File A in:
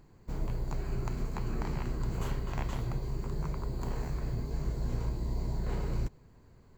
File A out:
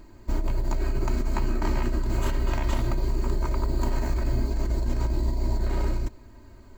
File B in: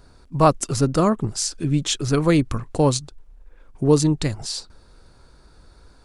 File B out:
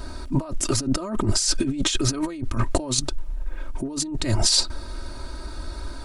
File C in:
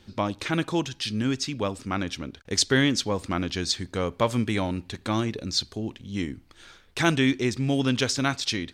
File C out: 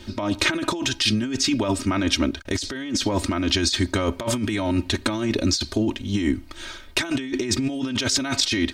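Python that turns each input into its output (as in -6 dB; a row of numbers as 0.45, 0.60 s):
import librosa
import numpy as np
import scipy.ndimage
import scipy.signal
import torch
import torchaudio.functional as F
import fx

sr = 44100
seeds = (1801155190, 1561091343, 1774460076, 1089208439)

y = x + 0.89 * np.pad(x, (int(3.2 * sr / 1000.0), 0))[:len(x)]
y = fx.over_compress(y, sr, threshold_db=-29.0, ratio=-1.0)
y = y * 10.0 ** (-24 / 20.0) / np.sqrt(np.mean(np.square(y)))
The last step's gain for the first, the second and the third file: +6.0, +4.5, +5.5 dB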